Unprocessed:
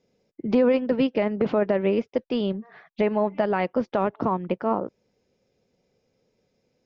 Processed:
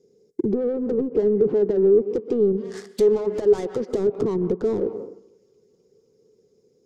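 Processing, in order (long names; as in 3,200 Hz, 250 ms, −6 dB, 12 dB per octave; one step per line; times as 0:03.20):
delay with a high-pass on its return 258 ms, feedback 81%, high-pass 4,600 Hz, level −24 dB
leveller curve on the samples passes 2
tilt shelving filter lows +4.5 dB, about 650 Hz, from 0:02.56 lows −3 dB, from 0:03.88 lows +4.5 dB
convolution reverb RT60 0.65 s, pre-delay 113 ms, DRR 19.5 dB
treble cut that deepens with the level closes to 770 Hz, closed at −11 dBFS
downward compressor 16 to 1, threshold −24 dBFS, peak gain reduction 13.5 dB
mid-hump overdrive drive 23 dB, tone 1,400 Hz, clips at −12 dBFS
drawn EQ curve 160 Hz 0 dB, 280 Hz −4 dB, 420 Hz +9 dB, 600 Hz −15 dB, 2,600 Hz −14 dB, 7,100 Hz +14 dB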